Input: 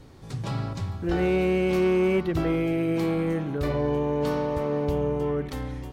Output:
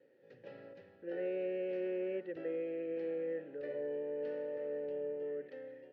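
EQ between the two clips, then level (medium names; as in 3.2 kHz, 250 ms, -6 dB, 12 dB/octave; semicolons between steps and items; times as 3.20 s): vowel filter e; cabinet simulation 180–5800 Hz, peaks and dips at 680 Hz -8 dB, 2.4 kHz -5 dB, 3.6 kHz -5 dB; treble shelf 4.4 kHz -11.5 dB; -1.0 dB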